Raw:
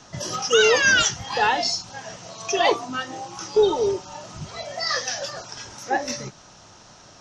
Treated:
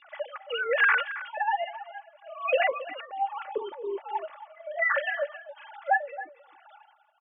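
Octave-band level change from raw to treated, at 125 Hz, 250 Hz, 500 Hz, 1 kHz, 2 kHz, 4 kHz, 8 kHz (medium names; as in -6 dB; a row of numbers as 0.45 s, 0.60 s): under -40 dB, -18.0 dB, -8.5 dB, -3.5 dB, -3.5 dB, -16.0 dB, under -40 dB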